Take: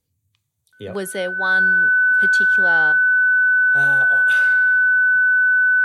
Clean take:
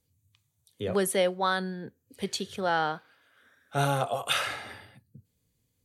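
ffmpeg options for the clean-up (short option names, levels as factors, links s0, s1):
-af "bandreject=f=1500:w=30,asetnsamples=n=441:p=0,asendcmd='2.92 volume volume 6.5dB',volume=1"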